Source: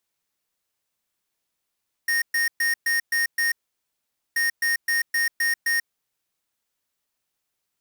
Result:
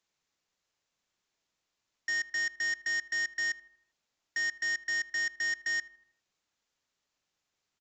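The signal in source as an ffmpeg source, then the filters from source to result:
-f lavfi -i "aevalsrc='0.0794*(2*lt(mod(1850*t,1),0.5)-1)*clip(min(mod(mod(t,2.28),0.26),0.14-mod(mod(t,2.28),0.26))/0.005,0,1)*lt(mod(t,2.28),1.56)':duration=4.56:sample_rate=44100"
-filter_complex "[0:a]aresample=16000,asoftclip=type=tanh:threshold=-29.5dB,aresample=44100,asplit=2[link_01][link_02];[link_02]adelay=79,lowpass=frequency=2100:poles=1,volume=-18dB,asplit=2[link_03][link_04];[link_04]adelay=79,lowpass=frequency=2100:poles=1,volume=0.55,asplit=2[link_05][link_06];[link_06]adelay=79,lowpass=frequency=2100:poles=1,volume=0.55,asplit=2[link_07][link_08];[link_08]adelay=79,lowpass=frequency=2100:poles=1,volume=0.55,asplit=2[link_09][link_10];[link_10]adelay=79,lowpass=frequency=2100:poles=1,volume=0.55[link_11];[link_01][link_03][link_05][link_07][link_09][link_11]amix=inputs=6:normalize=0"

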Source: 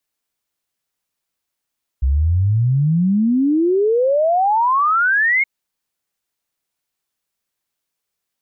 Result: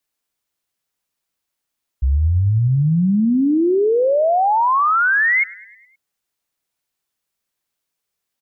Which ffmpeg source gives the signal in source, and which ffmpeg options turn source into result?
-f lavfi -i "aevalsrc='0.237*clip(min(t,3.42-t)/0.01,0,1)*sin(2*PI*63*3.42/log(2200/63)*(exp(log(2200/63)*t/3.42)-1))':duration=3.42:sample_rate=44100"
-af "aecho=1:1:104|208|312|416|520:0.0891|0.0517|0.03|0.0174|0.0101"

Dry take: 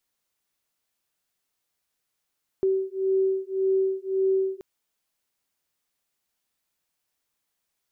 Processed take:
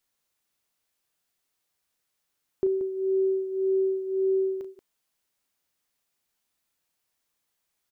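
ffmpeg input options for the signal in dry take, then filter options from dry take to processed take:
-f lavfi -i "aevalsrc='0.0596*(sin(2*PI*382*t)+sin(2*PI*383.8*t))':duration=1.98:sample_rate=44100"
-af "aecho=1:1:34.99|180.8:0.316|0.282"

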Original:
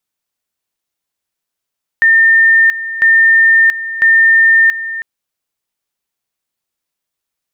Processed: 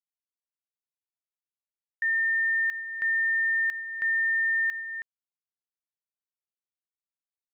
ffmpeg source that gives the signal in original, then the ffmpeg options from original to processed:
-f lavfi -i "aevalsrc='pow(10,(-5-13.5*gte(mod(t,1),0.68))/20)*sin(2*PI*1810*t)':duration=3:sample_rate=44100"
-af "agate=range=-33dB:threshold=-13dB:ratio=3:detection=peak,acompressor=threshold=-21dB:ratio=2.5,alimiter=limit=-22dB:level=0:latency=1:release=157"

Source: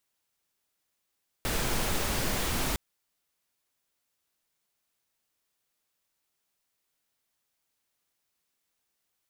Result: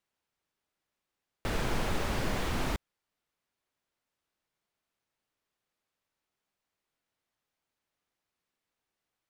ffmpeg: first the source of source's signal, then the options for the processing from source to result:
-f lavfi -i "anoisesrc=color=pink:amplitude=0.182:duration=1.31:sample_rate=44100:seed=1"
-af "lowpass=frequency=2200:poles=1"

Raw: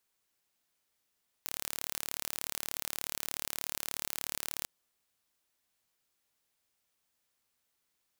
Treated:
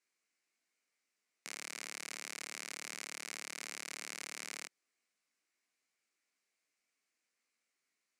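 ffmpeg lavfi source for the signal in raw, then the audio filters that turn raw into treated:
-f lavfi -i "aevalsrc='0.376*eq(mod(n,1202),0)':duration=3.2:sample_rate=44100"
-af "flanger=delay=17:depth=4.3:speed=2.7,highpass=frequency=200:width=0.5412,highpass=frequency=200:width=1.3066,equalizer=frequency=570:width_type=q:width=4:gain=-3,equalizer=frequency=890:width_type=q:width=4:gain=-7,equalizer=frequency=2200:width_type=q:width=4:gain=8,equalizer=frequency=3400:width_type=q:width=4:gain=-7,equalizer=frequency=9400:width_type=q:width=4:gain=-4,lowpass=frequency=9700:width=0.5412,lowpass=frequency=9700:width=1.3066"

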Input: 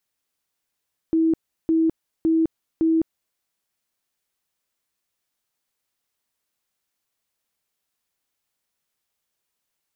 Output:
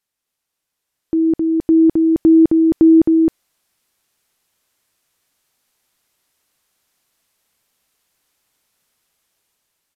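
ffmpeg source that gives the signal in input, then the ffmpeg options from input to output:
-f lavfi -i "aevalsrc='0.168*sin(2*PI*324*mod(t,0.56))*lt(mod(t,0.56),67/324)':duration=2.24:sample_rate=44100"
-af "aecho=1:1:264:0.631,aresample=32000,aresample=44100,dynaudnorm=framelen=630:gausssize=5:maxgain=11dB"

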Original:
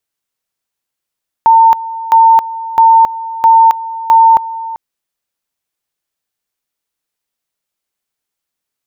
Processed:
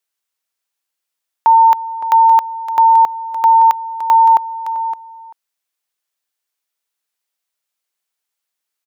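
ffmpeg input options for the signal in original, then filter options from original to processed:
-f lavfi -i "aevalsrc='pow(10,(-2.5-16.5*gte(mod(t,0.66),0.27))/20)*sin(2*PI*905*t)':duration=3.3:sample_rate=44100"
-filter_complex "[0:a]highpass=frequency=750:poles=1,asplit=2[link_01][link_02];[link_02]aecho=0:1:565:0.266[link_03];[link_01][link_03]amix=inputs=2:normalize=0"

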